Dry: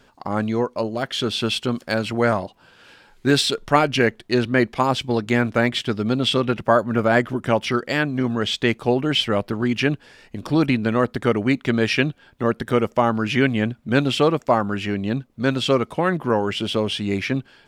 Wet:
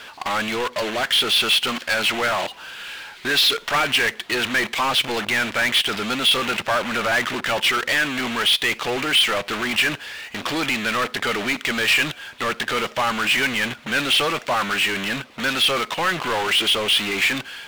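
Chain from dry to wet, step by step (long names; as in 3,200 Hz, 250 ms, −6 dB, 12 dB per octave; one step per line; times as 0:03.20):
low-pass filter 4,300 Hz
in parallel at −4.5 dB: fuzz pedal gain 43 dB, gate −35 dBFS
on the sum: resonant band-pass 3,100 Hz, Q 0.85
power curve on the samples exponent 0.5
level −4.5 dB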